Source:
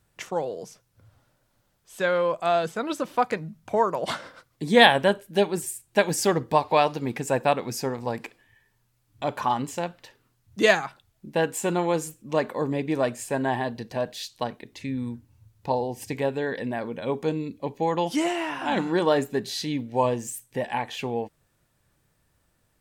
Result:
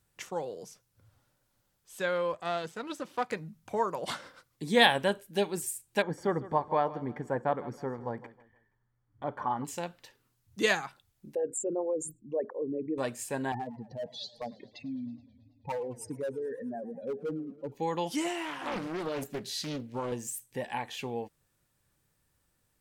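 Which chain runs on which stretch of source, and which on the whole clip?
2.33–3.3 half-wave gain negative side -7 dB + HPF 100 Hz + high shelf 11000 Hz -11 dB
6.02–9.65 polynomial smoothing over 41 samples + feedback echo 0.158 s, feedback 33%, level -17 dB
11.35–12.98 formant sharpening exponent 3 + de-esser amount 30%
13.52–17.72 spectral contrast raised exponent 2.8 + hard clip -22.5 dBFS + warbling echo 0.108 s, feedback 72%, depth 193 cents, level -21 dB
18.45–20.12 compressor 10:1, threshold -22 dBFS + Doppler distortion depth 0.71 ms
whole clip: high shelf 4500 Hz +5.5 dB; notch 650 Hz, Q 12; gain -7 dB

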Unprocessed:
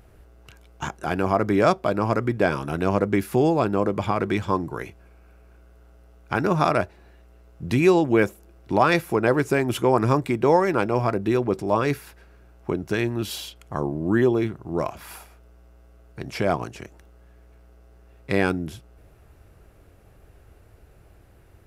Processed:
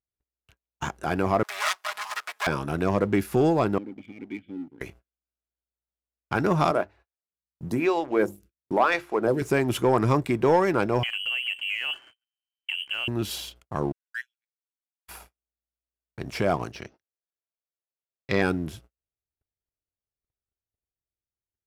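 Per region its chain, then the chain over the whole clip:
1.43–2.47 minimum comb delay 4.8 ms + HPF 920 Hz 24 dB/oct + high shelf 3200 Hz +11 dB
3.78–4.81 vowel filter i + high shelf 5200 Hz -10 dB + fixed phaser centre 2600 Hz, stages 4
6.71–9.42 HPF 63 Hz + notches 50/100/150/200/250/300/350 Hz + photocell phaser 1 Hz
11.03–13.08 compressor 4:1, threshold -24 dBFS + air absorption 360 m + inverted band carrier 3100 Hz
13.92–15.08 brick-wall FIR high-pass 1400 Hz + upward expander 2.5:1, over -47 dBFS
16.72–18.42 steep low-pass 5900 Hz 96 dB/oct + high shelf 3300 Hz +8 dB + notches 60/120/180/240/300/360/420 Hz
whole clip: sample leveller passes 1; gate -44 dBFS, range -41 dB; gain -4.5 dB

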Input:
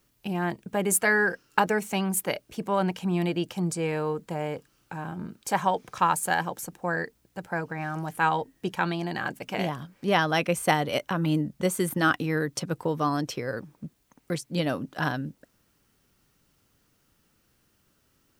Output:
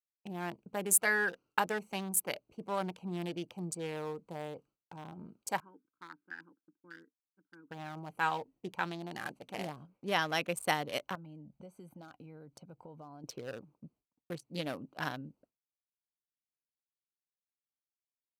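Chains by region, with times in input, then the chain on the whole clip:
5.6–7.71 double band-pass 670 Hz, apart 2.4 oct + air absorption 350 m
9.12–9.82 CVSD 64 kbps + notch 1000 Hz, Q 16
11.15–13.24 comb 1.3 ms, depth 38% + compressor 4:1, threshold -37 dBFS
whole clip: Wiener smoothing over 25 samples; expander -48 dBFS; tilt +2 dB/oct; gain -7.5 dB

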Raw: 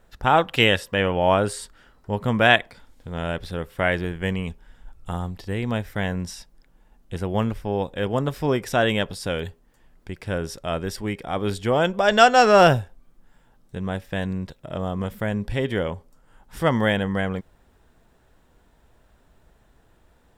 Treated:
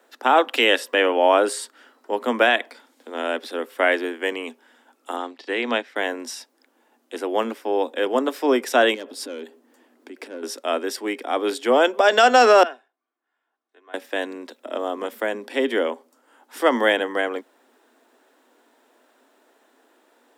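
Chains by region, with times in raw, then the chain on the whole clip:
5.16–5.96 transient shaper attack +1 dB, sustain -8 dB + BPF 190–3300 Hz + high shelf 2100 Hz +12 dB
8.94–10.43 tube stage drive 22 dB, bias 0.2 + low shelf 380 Hz +12 dB + compressor 8:1, threshold -28 dBFS
12.63–13.94 LPF 1500 Hz + differentiator + comb 2.8 ms, depth 52%
whole clip: steep high-pass 240 Hz 96 dB/oct; maximiser +8 dB; gain -4 dB

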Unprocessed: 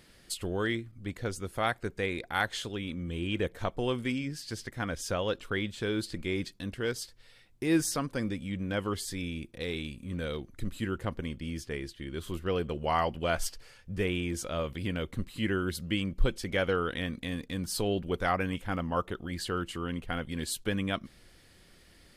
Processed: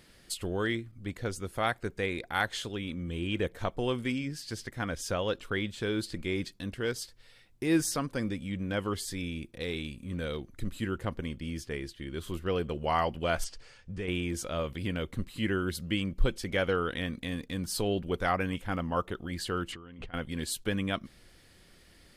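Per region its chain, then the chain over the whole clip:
13.44–14.08 LPF 8500 Hz 24 dB/oct + compressor 2:1, threshold -36 dBFS
19.72–20.14 negative-ratio compressor -45 dBFS + air absorption 120 m
whole clip: dry

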